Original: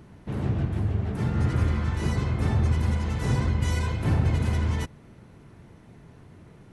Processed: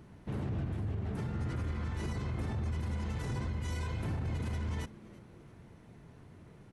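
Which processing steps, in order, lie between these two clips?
limiter -23.5 dBFS, peak gain reduction 11.5 dB; on a send: frequency-shifting echo 0.333 s, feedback 37%, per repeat +130 Hz, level -21 dB; on the sum: gain -5 dB

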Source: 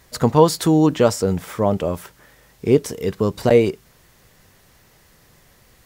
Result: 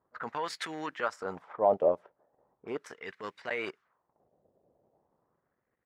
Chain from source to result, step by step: limiter -9.5 dBFS, peak gain reduction 8 dB; harmonic-percussive split percussive +5 dB; low-pass opened by the level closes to 380 Hz, open at -16.5 dBFS; transient shaper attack -8 dB, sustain -12 dB; wah 0.38 Hz 600–2000 Hz, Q 2.5

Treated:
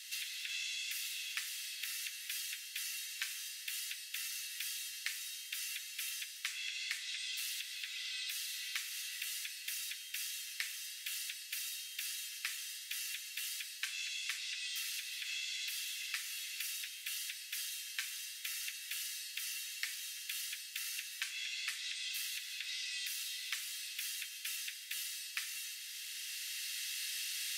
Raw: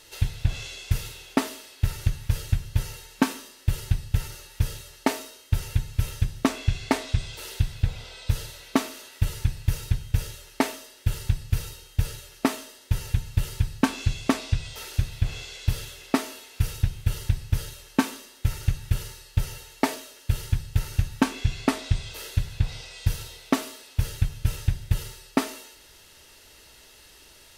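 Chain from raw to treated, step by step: recorder AGC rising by 7.9 dB/s; steep high-pass 1800 Hz 36 dB/oct; compressor 6:1, threshold -40 dBFS, peak gain reduction 12 dB; gain +2.5 dB

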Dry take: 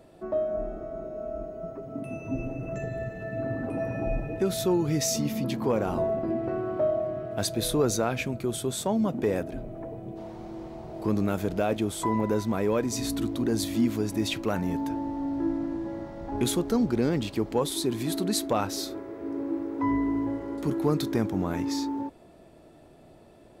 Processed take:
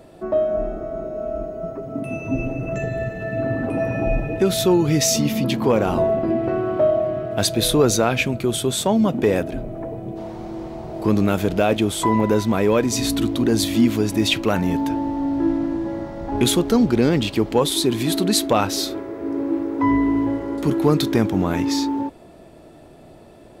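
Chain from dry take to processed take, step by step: dynamic EQ 3000 Hz, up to +5 dB, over -52 dBFS, Q 1.5; gain +8 dB

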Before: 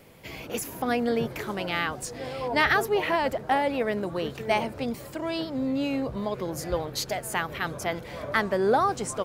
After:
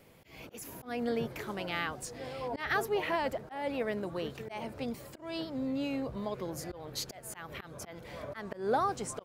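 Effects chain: auto swell 0.205 s; gain -6.5 dB

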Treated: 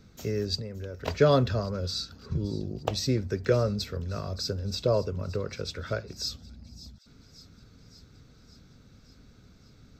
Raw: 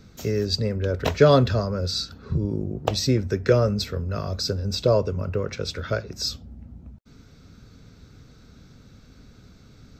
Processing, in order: 0.57–1.08 compressor 10:1, threshold -28 dBFS, peak gain reduction 10 dB; thin delay 0.569 s, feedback 66%, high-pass 3800 Hz, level -15.5 dB; gain -5.5 dB

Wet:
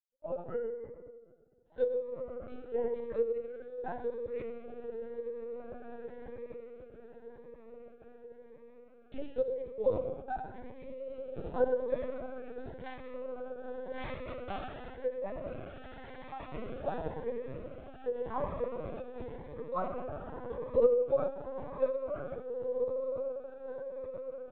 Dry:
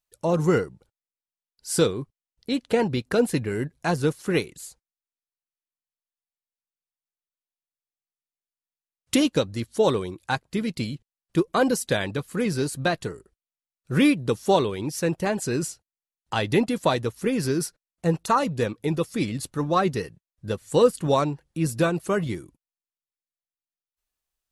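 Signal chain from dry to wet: 12.67–14.97 spectral contrast lowered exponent 0.19; spectral noise reduction 18 dB; comb 4 ms, depth 32%; dynamic EQ 510 Hz, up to -6 dB, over -35 dBFS, Q 0.94; sample leveller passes 1; ladder band-pass 620 Hz, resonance 60%; vibrato 1.8 Hz 41 cents; diffused feedback echo 1.984 s, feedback 41%, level -5.5 dB; shoebox room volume 2300 m³, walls mixed, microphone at 2.1 m; LPC vocoder at 8 kHz pitch kept; cascading phaser rising 0.91 Hz; gain -2.5 dB

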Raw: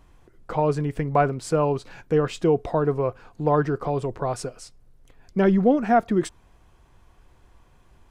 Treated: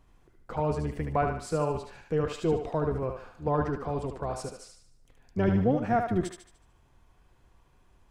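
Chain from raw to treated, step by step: octaver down 1 oct, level -3 dB; 2.89–3.46 transient shaper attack -9 dB, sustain +5 dB; thinning echo 74 ms, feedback 46%, high-pass 500 Hz, level -4.5 dB; gain -7.5 dB

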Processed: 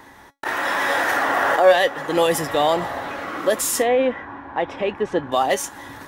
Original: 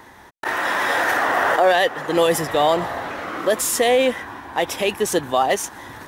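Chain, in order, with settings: 3.82–5.32 LPF 1900 Hz 12 dB/oct; resonator 280 Hz, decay 0.18 s, harmonics all, mix 60%; gain +5.5 dB

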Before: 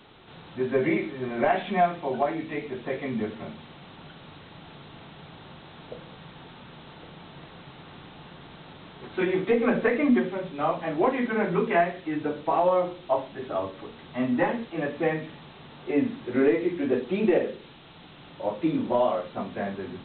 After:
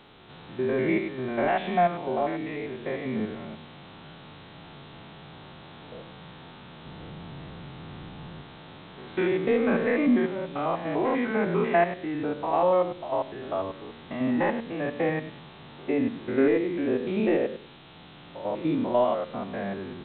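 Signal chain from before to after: stepped spectrum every 0.1 s; 6.85–8.42 low shelf 240 Hz +9.5 dB; gain +1.5 dB

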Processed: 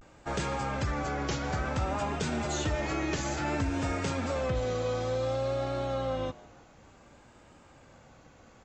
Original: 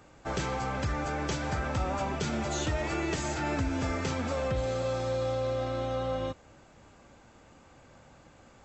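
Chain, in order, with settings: frequency-shifting echo 0.15 s, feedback 49%, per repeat +110 Hz, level -22 dB; vibrato 0.57 Hz 83 cents

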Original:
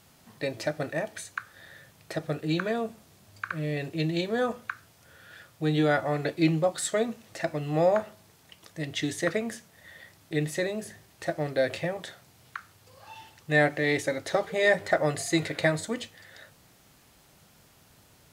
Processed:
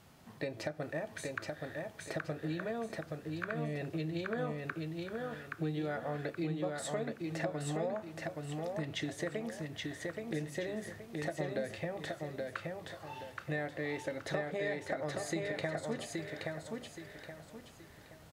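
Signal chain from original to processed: high shelf 3200 Hz -8.5 dB; compressor 6:1, threshold -35 dBFS, peak gain reduction 16 dB; on a send: feedback echo 0.824 s, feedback 35%, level -3 dB

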